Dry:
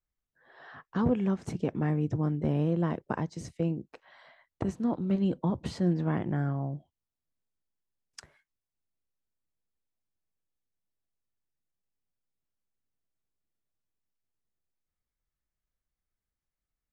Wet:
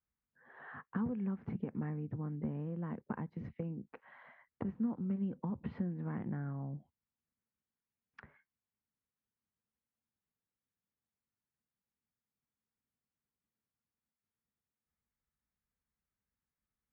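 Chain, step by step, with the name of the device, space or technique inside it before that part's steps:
bass amplifier (downward compressor 6 to 1, threshold −37 dBFS, peak gain reduction 15 dB; loudspeaker in its box 60–2,200 Hz, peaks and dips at 220 Hz +7 dB, 340 Hz −5 dB, 640 Hz −7 dB)

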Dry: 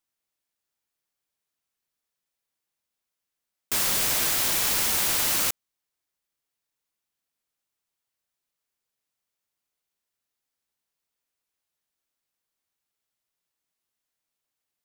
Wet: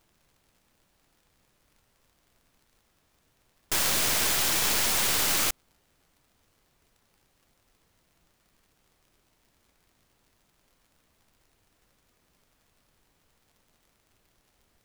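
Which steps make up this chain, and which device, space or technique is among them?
record under a worn stylus (stylus tracing distortion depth 0.042 ms; surface crackle; pink noise bed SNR 35 dB)

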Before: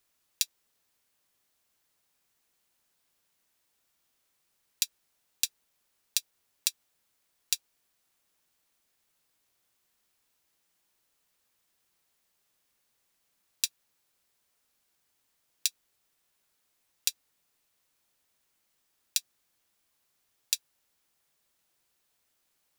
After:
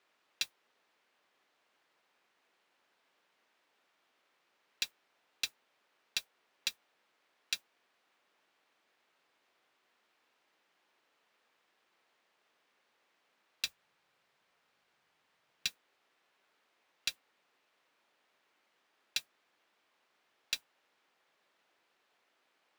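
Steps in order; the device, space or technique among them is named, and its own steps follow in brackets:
carbon microphone (band-pass filter 320–2,700 Hz; soft clipping −30.5 dBFS, distortion −8 dB; noise that follows the level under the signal 16 dB)
0:13.66–0:15.68: low shelf with overshoot 200 Hz +7.5 dB, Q 1.5
level +8.5 dB

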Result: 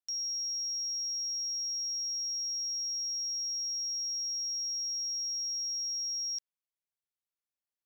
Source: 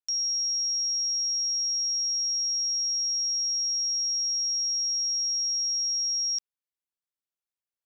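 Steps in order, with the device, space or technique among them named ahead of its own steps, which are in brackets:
parallel distortion (in parallel at −9 dB: hard clipping −37.5 dBFS, distortion −9 dB)
on the sum: level −8 dB

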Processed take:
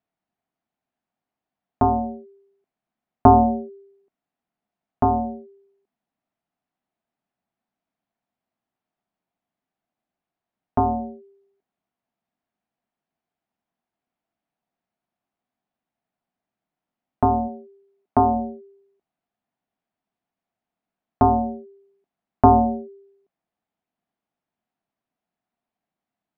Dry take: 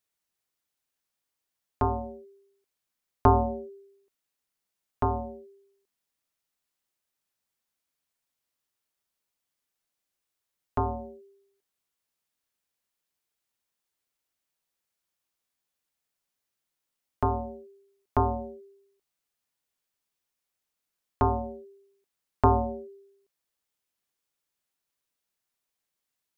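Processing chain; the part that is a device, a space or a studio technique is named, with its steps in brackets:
inside a cardboard box (low-pass filter 2,500 Hz 12 dB per octave; hollow resonant body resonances 210/690 Hz, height 14 dB, ringing for 20 ms)
0:17.47–0:18.34: high-pass filter 270 Hz → 89 Hz 6 dB per octave
level −1 dB

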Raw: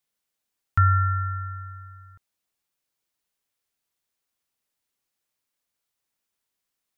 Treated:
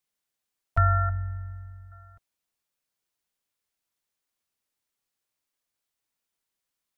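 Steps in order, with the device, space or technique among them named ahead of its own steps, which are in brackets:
0:01.09–0:01.92: flat-topped bell 1,000 Hz −15 dB
octave pedal (pitch-shifted copies added −12 semitones −9 dB)
level −3 dB

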